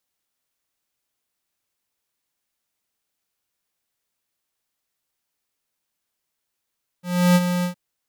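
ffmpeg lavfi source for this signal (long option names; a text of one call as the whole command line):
ffmpeg -f lavfi -i "aevalsrc='0.211*(2*lt(mod(178*t,1),0.5)-1)':duration=0.714:sample_rate=44100,afade=type=in:duration=0.325,afade=type=out:start_time=0.325:duration=0.041:silence=0.376,afade=type=out:start_time=0.61:duration=0.104" out.wav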